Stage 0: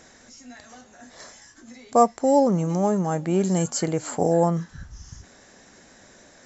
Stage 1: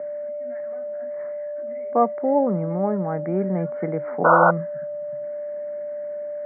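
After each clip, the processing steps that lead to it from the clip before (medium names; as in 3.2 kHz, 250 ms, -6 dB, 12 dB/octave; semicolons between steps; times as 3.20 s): painted sound noise, 4.24–4.51 s, 480–1500 Hz -13 dBFS; whistle 590 Hz -26 dBFS; Chebyshev band-pass 140–2100 Hz, order 5; trim -1.5 dB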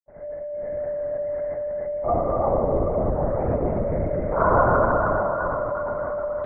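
reverberation RT60 5.1 s, pre-delay 77 ms; LPC vocoder at 8 kHz whisper; trim -5.5 dB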